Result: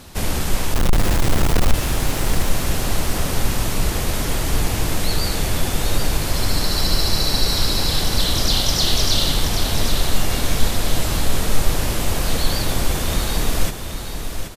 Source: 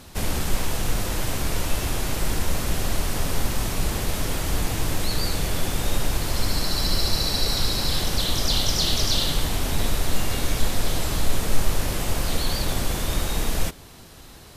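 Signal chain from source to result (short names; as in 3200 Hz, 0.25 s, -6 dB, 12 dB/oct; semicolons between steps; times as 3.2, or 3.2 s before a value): 0.74–1.74 half-waves squared off; feedback echo 0.778 s, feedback 35%, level -8 dB; gain +3.5 dB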